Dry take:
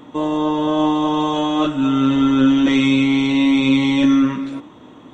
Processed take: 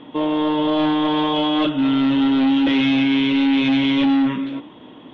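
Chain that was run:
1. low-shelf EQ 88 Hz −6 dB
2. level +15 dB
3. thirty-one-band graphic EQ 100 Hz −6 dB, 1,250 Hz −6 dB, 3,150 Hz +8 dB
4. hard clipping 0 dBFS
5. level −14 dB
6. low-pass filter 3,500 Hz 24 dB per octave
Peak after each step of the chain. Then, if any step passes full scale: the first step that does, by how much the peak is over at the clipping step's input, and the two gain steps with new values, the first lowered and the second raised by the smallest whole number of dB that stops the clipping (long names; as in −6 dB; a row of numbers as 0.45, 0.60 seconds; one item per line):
−5.5, +9.5, +10.0, 0.0, −14.0, −12.0 dBFS
step 2, 10.0 dB
step 2 +5 dB, step 5 −4 dB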